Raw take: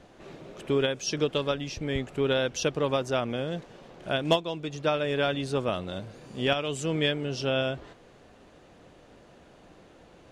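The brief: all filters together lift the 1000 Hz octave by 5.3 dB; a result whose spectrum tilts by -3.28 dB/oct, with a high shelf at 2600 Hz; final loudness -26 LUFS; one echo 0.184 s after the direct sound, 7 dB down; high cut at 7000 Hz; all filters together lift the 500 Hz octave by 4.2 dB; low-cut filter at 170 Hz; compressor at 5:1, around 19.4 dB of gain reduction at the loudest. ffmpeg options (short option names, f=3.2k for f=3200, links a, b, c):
-af "highpass=170,lowpass=7k,equalizer=f=500:t=o:g=3.5,equalizer=f=1k:t=o:g=4.5,highshelf=f=2.6k:g=9,acompressor=threshold=-35dB:ratio=5,aecho=1:1:184:0.447,volume=11.5dB"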